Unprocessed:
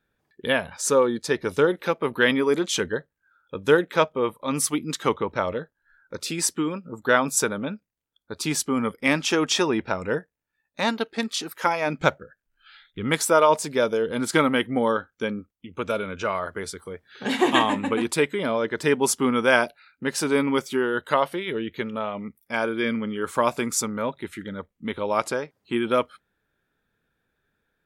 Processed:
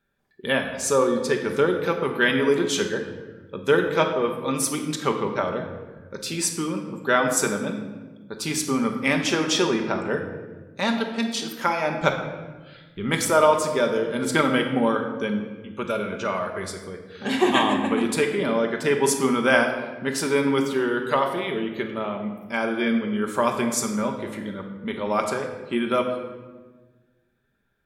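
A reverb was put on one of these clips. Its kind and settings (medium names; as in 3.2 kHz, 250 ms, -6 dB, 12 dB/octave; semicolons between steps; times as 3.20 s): simulated room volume 990 m³, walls mixed, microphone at 1.2 m; trim -1.5 dB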